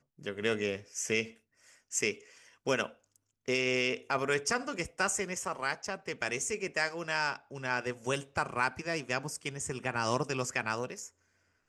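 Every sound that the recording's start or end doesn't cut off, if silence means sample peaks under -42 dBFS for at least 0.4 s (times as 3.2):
1.92–2.15
2.67–2.88
3.48–11.07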